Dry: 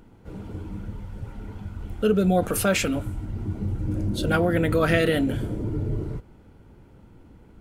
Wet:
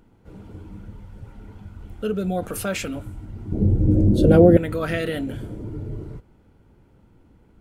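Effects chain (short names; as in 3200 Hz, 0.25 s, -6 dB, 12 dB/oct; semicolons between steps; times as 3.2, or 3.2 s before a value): 3.52–4.57 resonant low shelf 760 Hz +13.5 dB, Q 1.5; gain -4.5 dB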